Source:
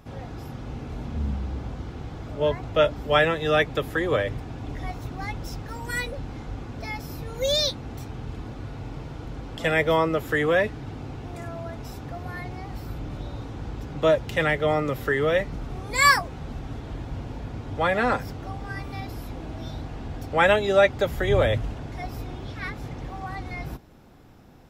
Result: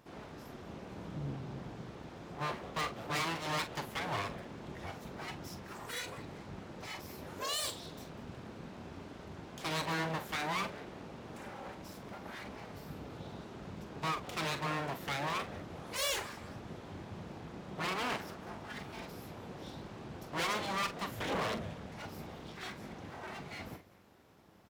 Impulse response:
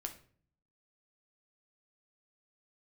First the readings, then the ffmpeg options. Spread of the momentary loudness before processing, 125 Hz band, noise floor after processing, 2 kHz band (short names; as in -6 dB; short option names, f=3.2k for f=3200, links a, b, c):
16 LU, -13.5 dB, -50 dBFS, -13.5 dB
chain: -filter_complex "[0:a]asoftclip=type=tanh:threshold=-15dB,aecho=1:1:197|394:0.119|0.0333,aeval=exprs='abs(val(0))':c=same,highpass=74,asplit=2[a][b];[b]adelay=43,volume=-10.5dB[c];[a][c]amix=inputs=2:normalize=0,volume=-7dB"